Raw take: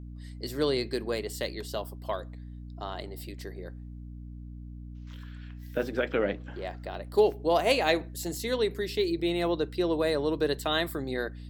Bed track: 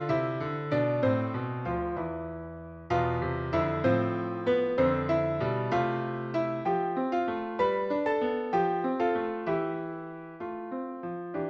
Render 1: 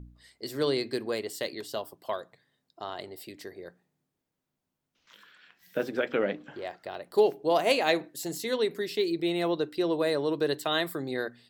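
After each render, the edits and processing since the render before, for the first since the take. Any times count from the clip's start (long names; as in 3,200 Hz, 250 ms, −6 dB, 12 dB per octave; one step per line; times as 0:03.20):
hum removal 60 Hz, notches 5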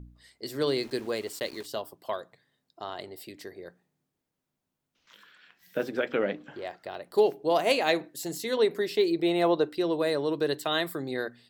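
0:00.67–0:01.66: centre clipping without the shift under −45.5 dBFS
0:08.57–0:09.75: parametric band 750 Hz +7 dB 1.9 octaves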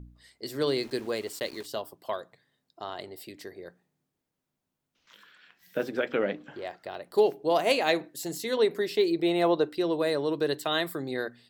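no processing that can be heard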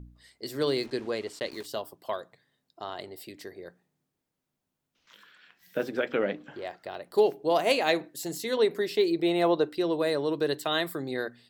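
0:00.86–0:01.51: high-frequency loss of the air 59 metres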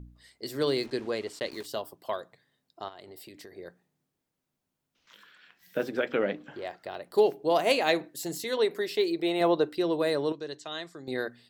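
0:02.88–0:03.53: downward compressor, threshold −43 dBFS
0:08.44–0:09.41: low-shelf EQ 220 Hz −9.5 dB
0:10.32–0:11.08: transistor ladder low-pass 7,100 Hz, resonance 60%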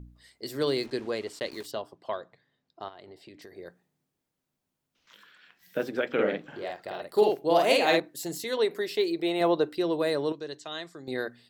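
0:01.71–0:03.42: high-frequency loss of the air 110 metres
0:06.13–0:08.00: double-tracking delay 48 ms −2 dB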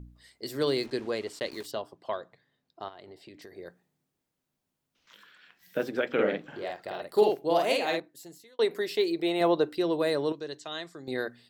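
0:07.19–0:08.59: fade out linear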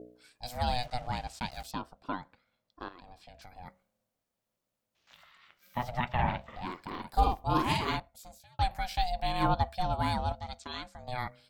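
ring modulation 370 Hz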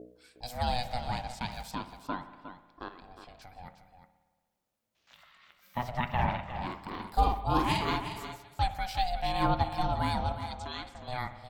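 single-tap delay 359 ms −10.5 dB
spring reverb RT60 1.4 s, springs 57 ms, chirp 65 ms, DRR 11.5 dB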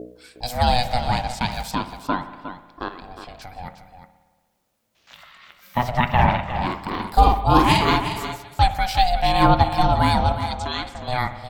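level +12 dB
brickwall limiter −2 dBFS, peak gain reduction 1.5 dB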